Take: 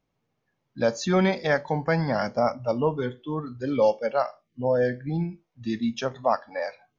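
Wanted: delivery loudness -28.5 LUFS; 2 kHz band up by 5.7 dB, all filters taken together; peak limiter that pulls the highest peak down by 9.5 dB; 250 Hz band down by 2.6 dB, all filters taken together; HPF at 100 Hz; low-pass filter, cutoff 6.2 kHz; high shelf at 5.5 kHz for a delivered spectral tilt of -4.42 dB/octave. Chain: high-pass 100 Hz; low-pass 6.2 kHz; peaking EQ 250 Hz -3.5 dB; peaking EQ 2 kHz +6.5 dB; treble shelf 5.5 kHz +5.5 dB; trim +0.5 dB; peak limiter -16 dBFS

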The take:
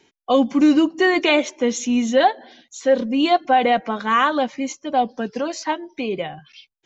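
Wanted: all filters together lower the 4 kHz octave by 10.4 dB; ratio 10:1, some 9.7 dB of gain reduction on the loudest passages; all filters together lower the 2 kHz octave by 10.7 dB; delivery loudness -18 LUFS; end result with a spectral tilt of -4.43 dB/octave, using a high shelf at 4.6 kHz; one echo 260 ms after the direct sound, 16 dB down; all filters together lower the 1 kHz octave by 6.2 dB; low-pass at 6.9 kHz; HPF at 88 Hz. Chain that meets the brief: high-pass 88 Hz; low-pass 6.9 kHz; peaking EQ 1 kHz -7.5 dB; peaking EQ 2 kHz -8 dB; peaking EQ 4 kHz -7 dB; treble shelf 4.6 kHz -6.5 dB; compression 10:1, threshold -22 dBFS; delay 260 ms -16 dB; trim +10 dB

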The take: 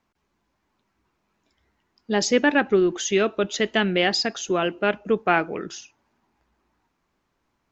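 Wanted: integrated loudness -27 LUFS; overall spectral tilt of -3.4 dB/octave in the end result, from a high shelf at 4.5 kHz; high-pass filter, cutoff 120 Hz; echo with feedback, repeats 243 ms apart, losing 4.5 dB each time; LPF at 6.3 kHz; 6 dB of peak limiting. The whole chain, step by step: high-pass 120 Hz; low-pass 6.3 kHz; treble shelf 4.5 kHz -8 dB; peak limiter -11 dBFS; feedback delay 243 ms, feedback 60%, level -4.5 dB; trim -4 dB

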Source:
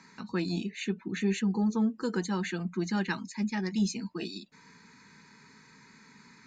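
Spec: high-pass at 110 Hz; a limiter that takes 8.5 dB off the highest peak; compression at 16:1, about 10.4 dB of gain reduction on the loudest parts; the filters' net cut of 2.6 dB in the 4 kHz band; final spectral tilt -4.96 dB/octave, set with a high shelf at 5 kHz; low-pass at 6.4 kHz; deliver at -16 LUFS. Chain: high-pass 110 Hz; low-pass 6.4 kHz; peaking EQ 4 kHz -5 dB; treble shelf 5 kHz +5.5 dB; compression 16:1, threshold -34 dBFS; trim +27 dB; peak limiter -7.5 dBFS

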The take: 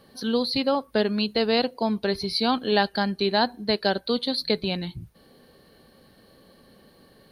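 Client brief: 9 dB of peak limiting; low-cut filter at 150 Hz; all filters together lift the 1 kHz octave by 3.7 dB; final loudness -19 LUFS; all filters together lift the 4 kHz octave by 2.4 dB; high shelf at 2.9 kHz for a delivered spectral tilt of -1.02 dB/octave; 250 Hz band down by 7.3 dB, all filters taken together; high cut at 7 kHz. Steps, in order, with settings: high-pass 150 Hz; low-pass 7 kHz; peaking EQ 250 Hz -8 dB; peaking EQ 1 kHz +6 dB; treble shelf 2.9 kHz -6.5 dB; peaking EQ 4 kHz +7.5 dB; trim +8 dB; peak limiter -7 dBFS

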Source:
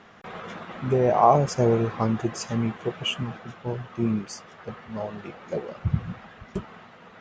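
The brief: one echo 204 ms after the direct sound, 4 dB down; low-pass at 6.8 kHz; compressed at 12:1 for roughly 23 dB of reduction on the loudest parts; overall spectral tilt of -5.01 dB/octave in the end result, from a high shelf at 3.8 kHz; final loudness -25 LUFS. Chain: low-pass 6.8 kHz; treble shelf 3.8 kHz -3.5 dB; compression 12:1, threshold -35 dBFS; delay 204 ms -4 dB; trim +14.5 dB

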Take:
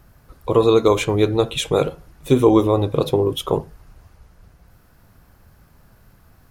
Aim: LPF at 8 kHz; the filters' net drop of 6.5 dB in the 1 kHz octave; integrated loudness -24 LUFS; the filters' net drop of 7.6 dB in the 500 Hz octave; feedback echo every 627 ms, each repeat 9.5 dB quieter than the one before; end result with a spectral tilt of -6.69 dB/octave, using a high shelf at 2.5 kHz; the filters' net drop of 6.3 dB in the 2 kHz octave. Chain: low-pass 8 kHz; peaking EQ 500 Hz -8.5 dB; peaking EQ 1 kHz -3.5 dB; peaking EQ 2 kHz -4.5 dB; treble shelf 2.5 kHz -4.5 dB; feedback delay 627 ms, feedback 33%, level -9.5 dB; trim -0.5 dB

